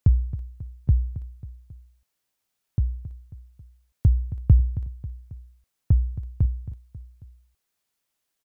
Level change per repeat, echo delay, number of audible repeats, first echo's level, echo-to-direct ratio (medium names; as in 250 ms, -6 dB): -5.5 dB, 271 ms, 3, -14.0 dB, -12.5 dB